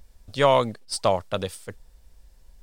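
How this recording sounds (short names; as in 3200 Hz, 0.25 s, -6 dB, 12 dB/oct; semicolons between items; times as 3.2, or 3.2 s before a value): noise floor -56 dBFS; spectral tilt -4.5 dB/oct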